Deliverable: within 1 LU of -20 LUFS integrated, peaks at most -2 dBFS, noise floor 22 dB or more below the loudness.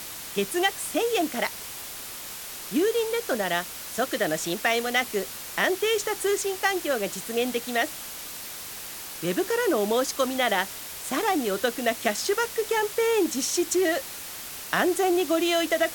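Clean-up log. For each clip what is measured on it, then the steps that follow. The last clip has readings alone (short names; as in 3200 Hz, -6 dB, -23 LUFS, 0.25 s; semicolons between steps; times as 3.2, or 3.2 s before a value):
noise floor -38 dBFS; noise floor target -48 dBFS; loudness -26.0 LUFS; peak -8.0 dBFS; loudness target -20.0 LUFS
-> denoiser 10 dB, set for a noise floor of -38 dBFS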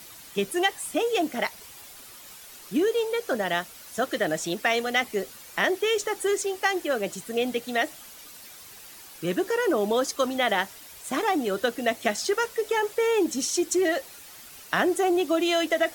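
noise floor -46 dBFS; noise floor target -48 dBFS
-> denoiser 6 dB, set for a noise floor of -46 dBFS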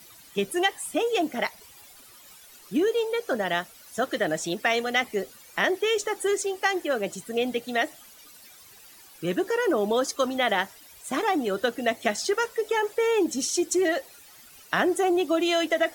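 noise floor -51 dBFS; loudness -26.0 LUFS; peak -8.5 dBFS; loudness target -20.0 LUFS
-> gain +6 dB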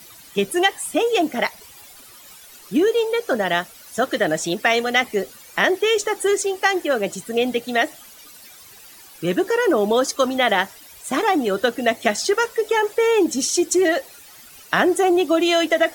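loudness -20.0 LUFS; peak -2.5 dBFS; noise floor -45 dBFS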